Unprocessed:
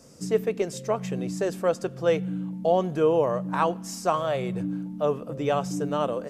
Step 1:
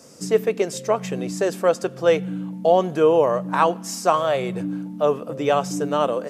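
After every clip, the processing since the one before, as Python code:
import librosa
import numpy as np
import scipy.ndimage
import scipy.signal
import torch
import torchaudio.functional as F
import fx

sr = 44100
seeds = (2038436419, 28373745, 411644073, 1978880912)

y = fx.highpass(x, sr, hz=270.0, slope=6)
y = F.gain(torch.from_numpy(y), 6.5).numpy()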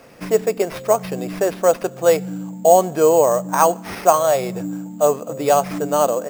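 y = fx.peak_eq(x, sr, hz=710.0, db=6.5, octaves=0.83)
y = fx.sample_hold(y, sr, seeds[0], rate_hz=7400.0, jitter_pct=0)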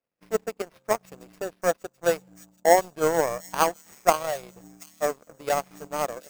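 y = fx.power_curve(x, sr, exponent=2.0)
y = fx.echo_wet_highpass(y, sr, ms=733, feedback_pct=43, hz=3900.0, wet_db=-15.0)
y = F.gain(torch.from_numpy(y), -2.0).numpy()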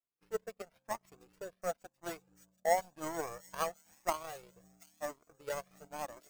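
y = fx.comb_cascade(x, sr, direction='rising', hz=0.97)
y = F.gain(torch.from_numpy(y), -8.5).numpy()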